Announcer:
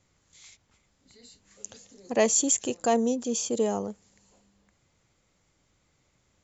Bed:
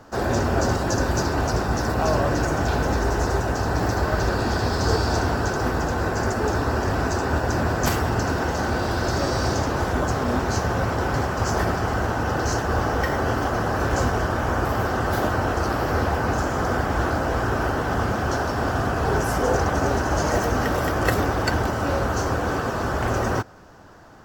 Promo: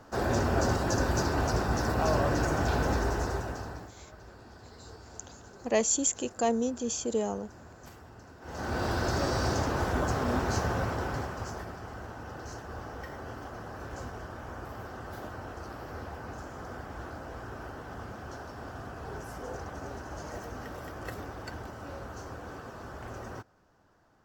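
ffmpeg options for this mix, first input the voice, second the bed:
-filter_complex "[0:a]adelay=3550,volume=-3.5dB[a];[1:a]volume=16.5dB,afade=t=out:st=2.91:d=1:silence=0.0749894,afade=t=in:st=8.41:d=0.44:silence=0.0794328,afade=t=out:st=10.62:d=1.02:silence=0.237137[b];[a][b]amix=inputs=2:normalize=0"

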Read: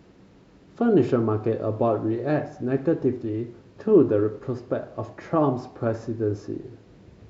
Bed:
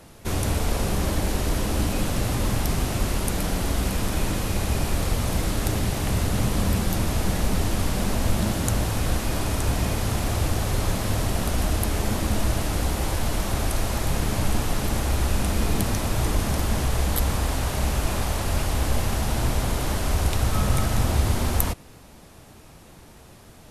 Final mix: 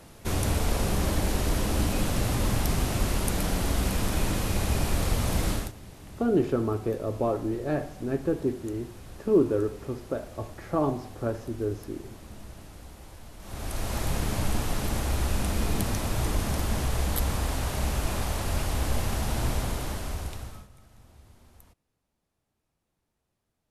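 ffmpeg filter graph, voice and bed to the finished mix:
-filter_complex "[0:a]adelay=5400,volume=-4.5dB[a];[1:a]volume=15.5dB,afade=t=out:st=5.52:d=0.2:silence=0.105925,afade=t=in:st=13.39:d=0.6:silence=0.133352,afade=t=out:st=19.52:d=1.16:silence=0.0375837[b];[a][b]amix=inputs=2:normalize=0"

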